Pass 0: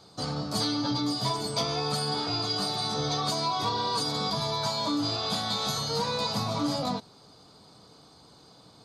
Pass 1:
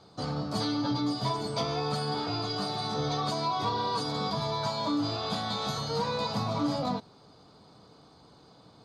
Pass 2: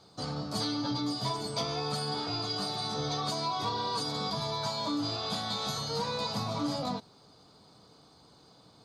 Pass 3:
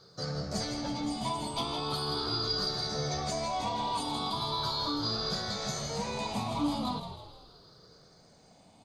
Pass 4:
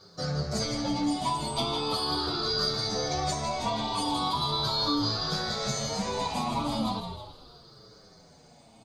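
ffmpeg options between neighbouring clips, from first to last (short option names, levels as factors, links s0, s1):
-af "lowpass=f=2600:p=1"
-af "highshelf=f=4300:g=9,volume=0.668"
-filter_complex "[0:a]afftfilt=real='re*pow(10,11/40*sin(2*PI*(0.58*log(max(b,1)*sr/1024/100)/log(2)-(0.39)*(pts-256)/sr)))':imag='im*pow(10,11/40*sin(2*PI*(0.58*log(max(b,1)*sr/1024/100)/log(2)-(0.39)*(pts-256)/sr)))':win_size=1024:overlap=0.75,asplit=6[s0][s1][s2][s3][s4][s5];[s1]adelay=161,afreqshift=-70,volume=0.376[s6];[s2]adelay=322,afreqshift=-140,volume=0.174[s7];[s3]adelay=483,afreqshift=-210,volume=0.0794[s8];[s4]adelay=644,afreqshift=-280,volume=0.0367[s9];[s5]adelay=805,afreqshift=-350,volume=0.0168[s10];[s0][s6][s7][s8][s9][s10]amix=inputs=6:normalize=0,volume=0.794"
-filter_complex "[0:a]asplit=2[s0][s1];[s1]adelay=7.4,afreqshift=-0.99[s2];[s0][s2]amix=inputs=2:normalize=1,volume=2.24"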